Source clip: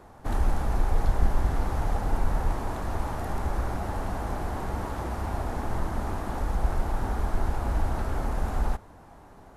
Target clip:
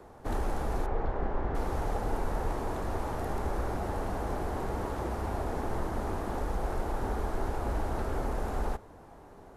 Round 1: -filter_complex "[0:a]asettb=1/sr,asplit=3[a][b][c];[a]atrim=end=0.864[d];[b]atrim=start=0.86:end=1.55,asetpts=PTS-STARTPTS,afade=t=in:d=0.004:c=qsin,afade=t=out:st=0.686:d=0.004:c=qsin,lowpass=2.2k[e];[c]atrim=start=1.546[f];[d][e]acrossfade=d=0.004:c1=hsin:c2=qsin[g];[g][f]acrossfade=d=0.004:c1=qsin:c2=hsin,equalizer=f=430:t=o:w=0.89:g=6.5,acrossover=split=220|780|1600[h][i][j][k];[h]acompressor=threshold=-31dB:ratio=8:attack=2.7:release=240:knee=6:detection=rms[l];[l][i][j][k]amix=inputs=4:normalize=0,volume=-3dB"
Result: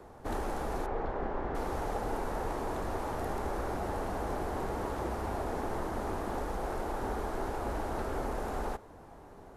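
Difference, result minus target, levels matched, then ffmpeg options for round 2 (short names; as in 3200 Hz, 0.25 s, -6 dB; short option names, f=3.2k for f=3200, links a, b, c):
compressor: peak gain reduction +7.5 dB
-filter_complex "[0:a]asettb=1/sr,asplit=3[a][b][c];[a]atrim=end=0.864[d];[b]atrim=start=0.86:end=1.55,asetpts=PTS-STARTPTS,afade=t=in:d=0.004:c=qsin,afade=t=out:st=0.686:d=0.004:c=qsin,lowpass=2.2k[e];[c]atrim=start=1.546[f];[d][e]acrossfade=d=0.004:c1=hsin:c2=qsin[g];[g][f]acrossfade=d=0.004:c1=qsin:c2=hsin,equalizer=f=430:t=o:w=0.89:g=6.5,acrossover=split=220|780|1600[h][i][j][k];[h]acompressor=threshold=-22.5dB:ratio=8:attack=2.7:release=240:knee=6:detection=rms[l];[l][i][j][k]amix=inputs=4:normalize=0,volume=-3dB"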